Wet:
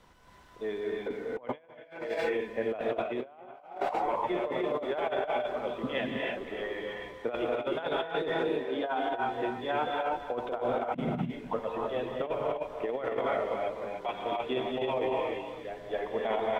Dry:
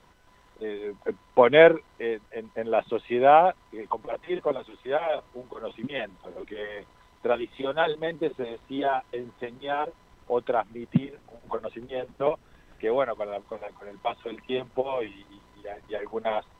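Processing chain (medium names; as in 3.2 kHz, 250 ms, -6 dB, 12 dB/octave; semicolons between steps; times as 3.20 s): 8.32–9.00 s: tone controls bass -10 dB, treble -5 dB; speakerphone echo 290 ms, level -10 dB; gated-style reverb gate 340 ms rising, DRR -2 dB; compressor with a negative ratio -26 dBFS, ratio -0.5; trim -5.5 dB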